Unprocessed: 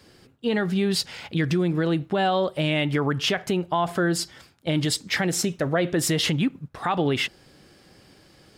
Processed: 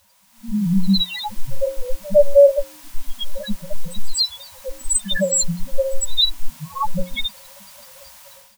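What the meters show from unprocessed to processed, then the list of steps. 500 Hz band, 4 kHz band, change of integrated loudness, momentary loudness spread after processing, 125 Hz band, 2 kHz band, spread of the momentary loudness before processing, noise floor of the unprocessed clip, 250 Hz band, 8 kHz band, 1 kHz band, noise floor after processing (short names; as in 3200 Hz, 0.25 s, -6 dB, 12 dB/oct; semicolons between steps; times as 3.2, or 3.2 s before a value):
+7.5 dB, +5.5 dB, +4.5 dB, 19 LU, -2.5 dB, -6.5 dB, 5 LU, -55 dBFS, -1.0 dB, +8.5 dB, -4.0 dB, -52 dBFS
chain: one-sided fold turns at -25.5 dBFS; comb 3.6 ms, depth 77%; in parallel at -0.5 dB: compressor, threshold -31 dBFS, peak gain reduction 14.5 dB; on the sum: thirty-one-band EQ 500 Hz +6 dB, 4000 Hz +11 dB, 8000 Hz +11 dB; loudest bins only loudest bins 1; added noise white -61 dBFS; elliptic band-stop 190–670 Hz, stop band 40 dB; notches 60/120/180/240/300/360/420/480/540 Hz; on a send: reverse echo 0.107 s -22.5 dB; on the sum: AGC gain up to 16 dB; small resonant body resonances 560/960 Hz, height 13 dB, ringing for 45 ms; gain +1 dB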